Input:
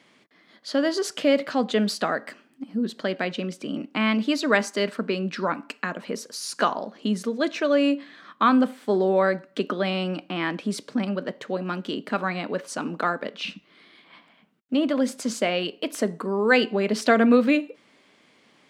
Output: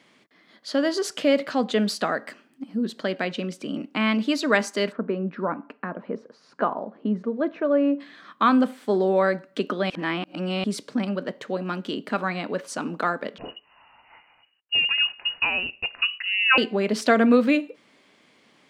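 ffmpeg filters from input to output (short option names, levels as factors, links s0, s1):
-filter_complex "[0:a]asplit=3[s0][s1][s2];[s0]afade=t=out:st=4.91:d=0.02[s3];[s1]lowpass=1200,afade=t=in:st=4.91:d=0.02,afade=t=out:st=7.99:d=0.02[s4];[s2]afade=t=in:st=7.99:d=0.02[s5];[s3][s4][s5]amix=inputs=3:normalize=0,asettb=1/sr,asplit=3[s6][s7][s8];[s6]atrim=end=13.384[s9];[s7]atrim=start=13.38:end=16.58,asetpts=PTS-STARTPTS,afade=t=in:d=0.004:c=qsin,afade=t=out:st=3.196:d=0.004:c=qsin,lowpass=f=2600:t=q:w=0.5098,lowpass=f=2600:t=q:w=0.6013,lowpass=f=2600:t=q:w=0.9,lowpass=f=2600:t=q:w=2.563,afreqshift=-3100[s10];[s8]atrim=start=16.576[s11];[s9][s10]acrossfade=d=0.004:c1=hsin:c2=qsin[s12];[s12][s11]acrossfade=d=0.004:c1=qsin:c2=hsin,asplit=3[s13][s14][s15];[s13]atrim=end=9.902[s16];[s14]atrim=start=9.898:end=10.642,asetpts=PTS-STARTPTS,areverse[s17];[s15]atrim=start=10.638[s18];[s16][s17]acrossfade=d=0.004:c1=hsin:c2=hsin[s19];[s19][s18]acrossfade=d=0.004:c1=hsin:c2=hsin"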